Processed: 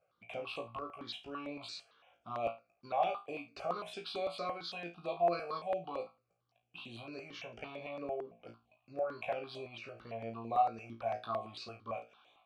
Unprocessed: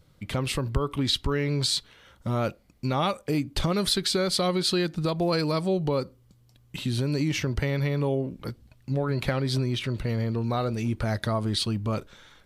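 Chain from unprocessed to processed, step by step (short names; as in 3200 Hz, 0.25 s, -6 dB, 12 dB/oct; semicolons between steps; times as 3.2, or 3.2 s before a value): vowel filter a; low shelf 170 Hz -6 dB; flutter echo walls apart 3 m, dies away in 0.27 s; step phaser 8.9 Hz 1000–5100 Hz; gain +4 dB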